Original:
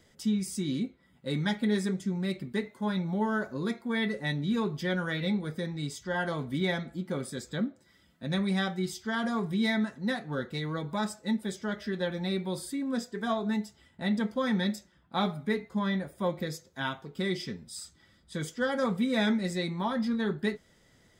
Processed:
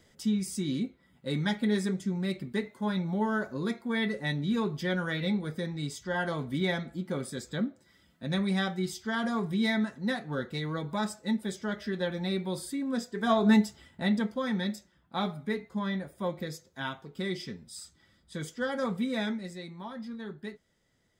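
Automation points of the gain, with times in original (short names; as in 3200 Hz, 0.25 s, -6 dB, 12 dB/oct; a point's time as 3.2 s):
13.11 s 0 dB
13.53 s +9.5 dB
14.41 s -2.5 dB
19.07 s -2.5 dB
19.59 s -10.5 dB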